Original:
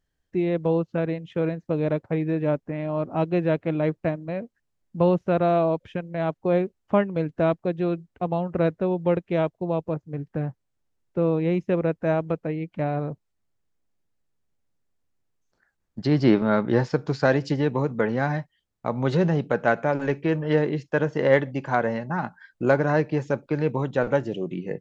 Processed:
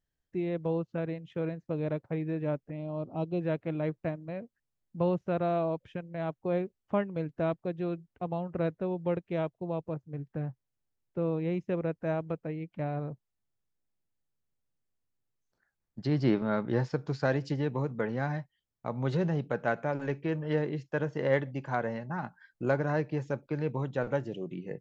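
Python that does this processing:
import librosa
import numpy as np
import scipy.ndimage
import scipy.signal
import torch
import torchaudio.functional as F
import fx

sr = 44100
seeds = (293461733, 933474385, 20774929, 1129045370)

y = fx.env_phaser(x, sr, low_hz=160.0, high_hz=1800.0, full_db=-25.5, at=(2.63, 3.41))
y = fx.peak_eq(y, sr, hz=130.0, db=4.0, octaves=0.44)
y = F.gain(torch.from_numpy(y), -8.5).numpy()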